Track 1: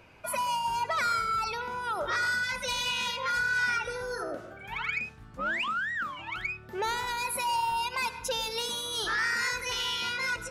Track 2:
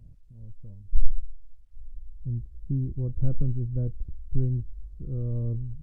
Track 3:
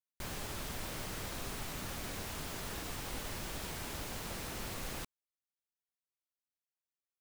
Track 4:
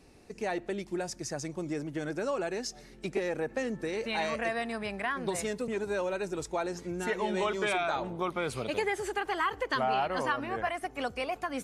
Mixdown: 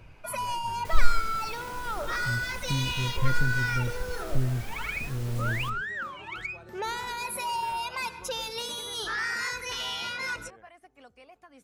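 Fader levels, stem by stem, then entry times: −2.0, −2.0, −3.0, −19.0 decibels; 0.00, 0.00, 0.65, 0.00 seconds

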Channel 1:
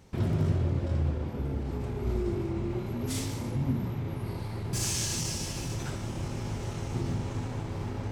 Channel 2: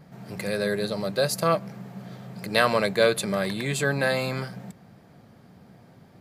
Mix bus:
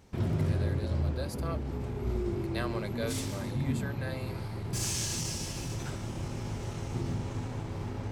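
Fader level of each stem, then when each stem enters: −2.0, −16.5 decibels; 0.00, 0.00 seconds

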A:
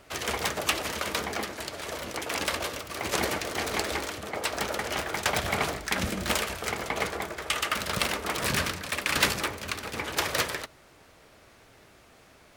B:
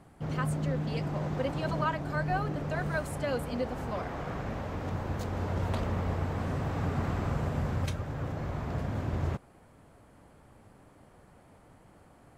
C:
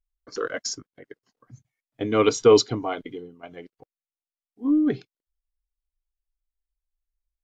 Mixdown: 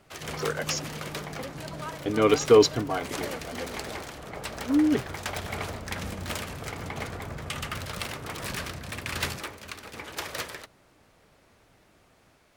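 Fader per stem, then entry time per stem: −7.0, −8.0, −1.5 decibels; 0.00, 0.00, 0.05 seconds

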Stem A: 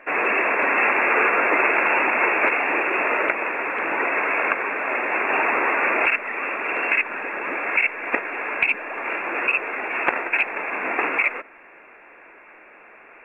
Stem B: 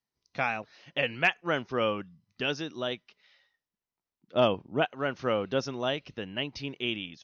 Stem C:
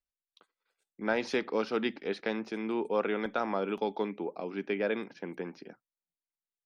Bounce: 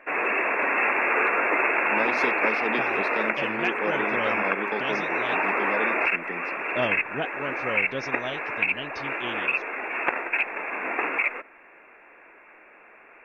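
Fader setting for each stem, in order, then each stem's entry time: −4.0, −3.5, 0.0 decibels; 0.00, 2.40, 0.90 seconds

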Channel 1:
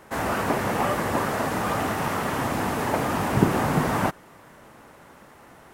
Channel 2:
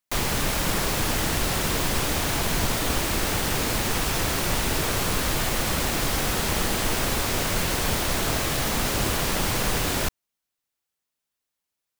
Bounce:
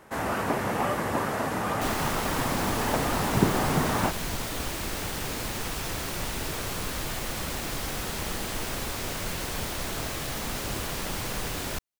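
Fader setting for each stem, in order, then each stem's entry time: −3.0, −7.5 decibels; 0.00, 1.70 seconds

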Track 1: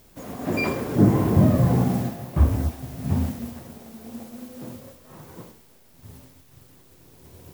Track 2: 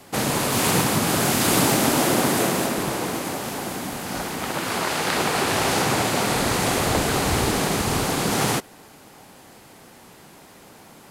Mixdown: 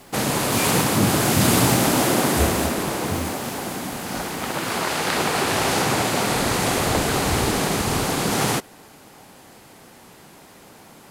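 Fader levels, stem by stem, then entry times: −6.0, +0.5 decibels; 0.00, 0.00 seconds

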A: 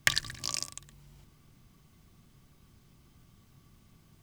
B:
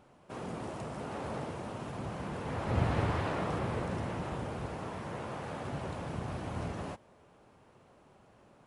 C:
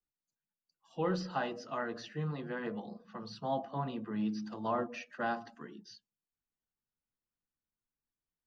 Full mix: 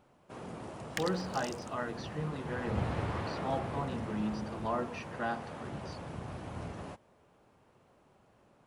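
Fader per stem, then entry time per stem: −13.0, −4.0, −0.5 decibels; 0.90, 0.00, 0.00 seconds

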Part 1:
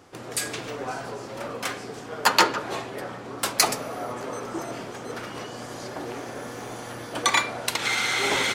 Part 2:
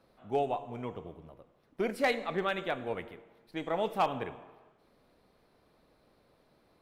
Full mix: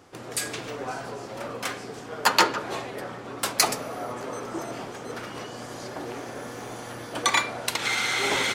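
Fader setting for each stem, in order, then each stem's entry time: −1.0, −16.0 decibels; 0.00, 0.80 seconds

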